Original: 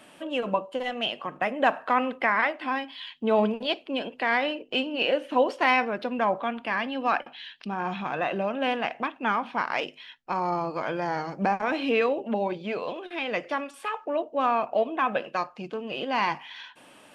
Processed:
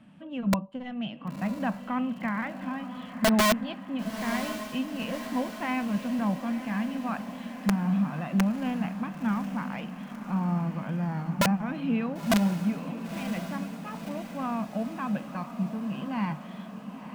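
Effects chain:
low-pass filter 1,900 Hz 6 dB per octave
low shelf with overshoot 280 Hz +12 dB, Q 3
wrap-around overflow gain 9 dB
feedback delay with all-pass diffusion 1,007 ms, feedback 61%, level −10 dB
level −8 dB

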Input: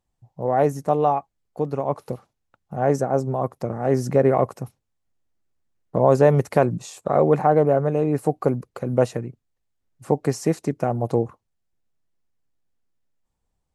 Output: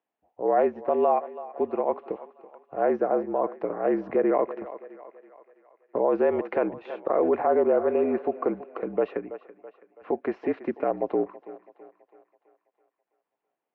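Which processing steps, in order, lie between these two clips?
feedback echo with a high-pass in the loop 329 ms, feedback 55%, high-pass 390 Hz, level −17 dB
brickwall limiter −11 dBFS, peak gain reduction 7.5 dB
single-sideband voice off tune −50 Hz 330–2,900 Hz

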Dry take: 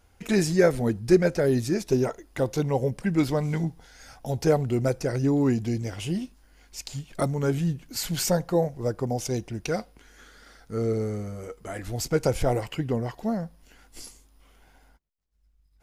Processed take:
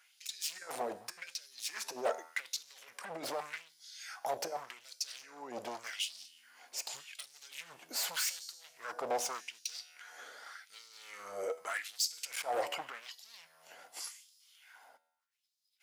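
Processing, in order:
compressor whose output falls as the input rises −26 dBFS, ratio −0.5
tuned comb filter 81 Hz, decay 0.96 s, harmonics all, mix 50%
hard clipping −34.5 dBFS, distortion −7 dB
auto-filter high-pass sine 0.85 Hz 580–4,600 Hz
level +2.5 dB

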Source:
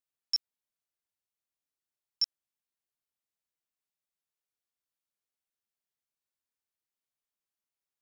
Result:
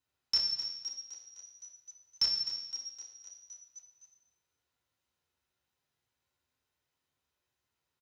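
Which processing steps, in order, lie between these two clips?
echo with shifted repeats 257 ms, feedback 62%, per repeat +100 Hz, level −11 dB
convolution reverb RT60 1.1 s, pre-delay 3 ms, DRR −5 dB
level −1.5 dB

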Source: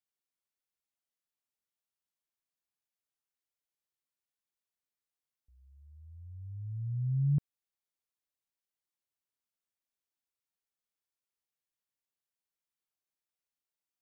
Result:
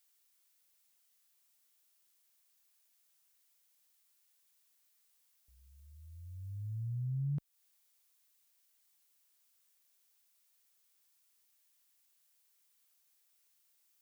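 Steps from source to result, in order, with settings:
spectral tilt +3 dB per octave
downward compressor 2.5 to 1, threshold −47 dBFS, peak gain reduction 9.5 dB
level +9.5 dB

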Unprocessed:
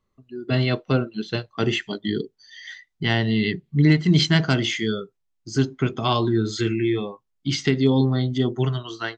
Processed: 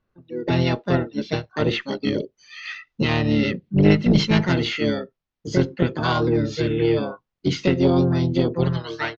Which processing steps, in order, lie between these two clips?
camcorder AGC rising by 9.5 dB per second
high-shelf EQ 5,400 Hz +4 dB
pitch-shifted copies added −7 semitones −13 dB, +5 semitones −1 dB
harmonic generator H 2 −8 dB, 8 −35 dB, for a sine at −0.5 dBFS
high-frequency loss of the air 180 metres
downsampling to 16,000 Hz
level −1.5 dB

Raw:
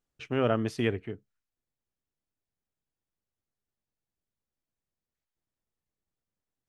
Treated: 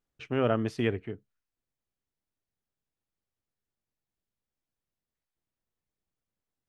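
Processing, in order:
high-shelf EQ 5,300 Hz −6.5 dB

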